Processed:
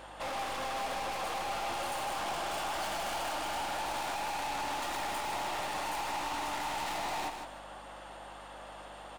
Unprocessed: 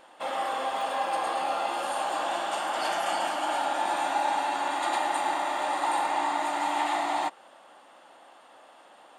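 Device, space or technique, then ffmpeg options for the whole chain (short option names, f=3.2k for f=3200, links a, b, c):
valve amplifier with mains hum: -af "aeval=exprs='(tanh(112*val(0)+0.15)-tanh(0.15))/112':c=same,aeval=exprs='val(0)+0.000794*(sin(2*PI*50*n/s)+sin(2*PI*2*50*n/s)/2+sin(2*PI*3*50*n/s)/3+sin(2*PI*4*50*n/s)/4+sin(2*PI*5*50*n/s)/5)':c=same,aecho=1:1:155|310|465:0.447|0.107|0.0257,volume=5.5dB"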